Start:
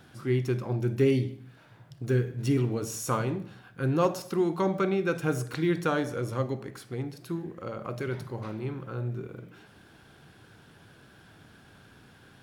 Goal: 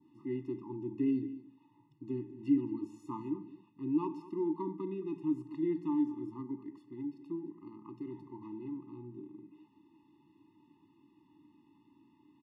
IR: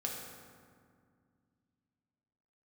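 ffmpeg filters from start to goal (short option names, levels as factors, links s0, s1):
-filter_complex "[0:a]adynamicequalizer=threshold=0.00355:dfrequency=2800:dqfactor=0.77:tfrequency=2800:tqfactor=0.77:attack=5:release=100:ratio=0.375:range=2:mode=cutabove:tftype=bell,asplit=3[s0][s1][s2];[s0]bandpass=f=300:t=q:w=8,volume=1[s3];[s1]bandpass=f=870:t=q:w=8,volume=0.501[s4];[s2]bandpass=f=2240:t=q:w=8,volume=0.355[s5];[s3][s4][s5]amix=inputs=3:normalize=0,aecho=1:1:219:0.141,afftfilt=real='re*eq(mod(floor(b*sr/1024/420),2),0)':imag='im*eq(mod(floor(b*sr/1024/420),2),0)':win_size=1024:overlap=0.75,volume=1.41"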